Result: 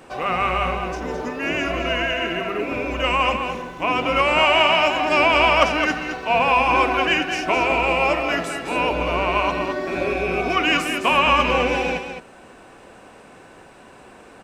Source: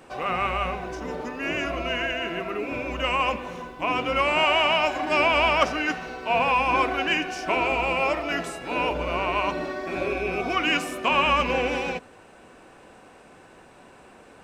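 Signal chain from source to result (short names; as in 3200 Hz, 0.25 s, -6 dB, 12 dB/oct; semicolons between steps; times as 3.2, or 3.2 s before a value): echo 0.213 s -7.5 dB; gain +4 dB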